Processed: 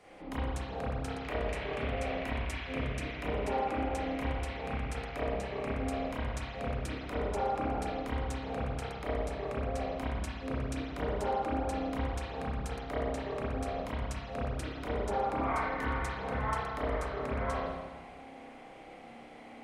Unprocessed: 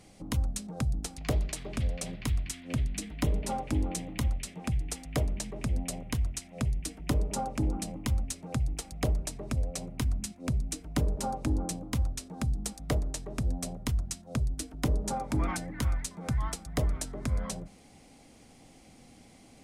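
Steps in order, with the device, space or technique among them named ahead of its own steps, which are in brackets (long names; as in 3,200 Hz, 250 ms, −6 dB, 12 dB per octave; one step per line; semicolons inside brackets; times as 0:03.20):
DJ mixer with the lows and highs turned down (three-way crossover with the lows and the highs turned down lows −16 dB, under 360 Hz, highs −13 dB, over 2,700 Hz; brickwall limiter −34 dBFS, peak gain reduction 11 dB)
spring reverb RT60 1.4 s, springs 30/56 ms, chirp 25 ms, DRR −9.5 dB
level +1.5 dB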